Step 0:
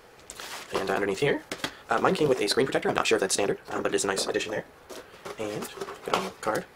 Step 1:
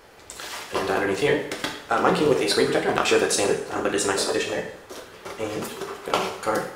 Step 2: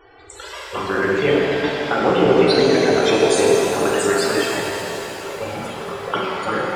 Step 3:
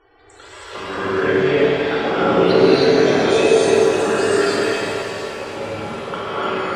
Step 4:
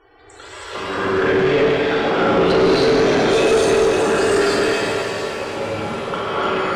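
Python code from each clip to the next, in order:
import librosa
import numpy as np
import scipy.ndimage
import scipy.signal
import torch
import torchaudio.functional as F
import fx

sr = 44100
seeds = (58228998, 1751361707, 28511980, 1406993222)

y1 = fx.rev_double_slope(x, sr, seeds[0], early_s=0.63, late_s=1.8, knee_db=-18, drr_db=1.0)
y1 = y1 * 10.0 ** (1.5 / 20.0)
y2 = fx.env_flanger(y1, sr, rest_ms=2.8, full_db=-16.0)
y2 = fx.spec_topn(y2, sr, count=64)
y2 = fx.rev_shimmer(y2, sr, seeds[1], rt60_s=3.6, semitones=7, shimmer_db=-8, drr_db=-2.0)
y2 = y2 * 10.0 ** (4.0 / 20.0)
y3 = fx.quant_float(y2, sr, bits=6)
y3 = fx.air_absorb(y3, sr, metres=55.0)
y3 = fx.rev_gated(y3, sr, seeds[2], gate_ms=340, shape='rising', drr_db=-7.5)
y3 = y3 * 10.0 ** (-7.0 / 20.0)
y4 = fx.tube_stage(y3, sr, drive_db=14.0, bias=0.25)
y4 = y4 * 10.0 ** (3.5 / 20.0)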